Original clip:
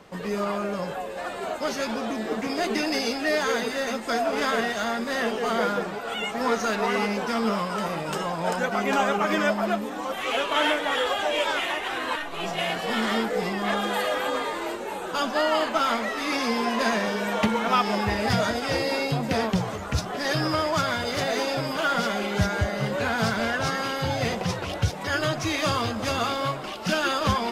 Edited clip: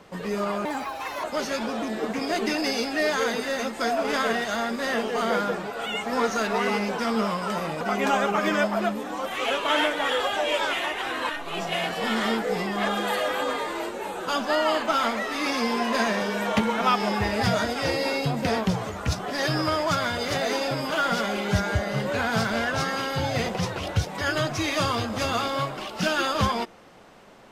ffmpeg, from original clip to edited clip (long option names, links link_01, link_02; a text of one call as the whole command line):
ffmpeg -i in.wav -filter_complex "[0:a]asplit=4[link_01][link_02][link_03][link_04];[link_01]atrim=end=0.654[link_05];[link_02]atrim=start=0.65:end=1.52,asetpts=PTS-STARTPTS,asetrate=65268,aresample=44100[link_06];[link_03]atrim=start=1.516:end=8.092[link_07];[link_04]atrim=start=8.668[link_08];[link_05][link_06]acrossfade=duration=0.004:curve1=hsin:curve2=hsin[link_09];[link_09][link_07]acrossfade=duration=0.004:curve1=hsin:curve2=hsin[link_10];[link_10][link_08]acrossfade=duration=0.004:curve1=hsin:curve2=hsin" out.wav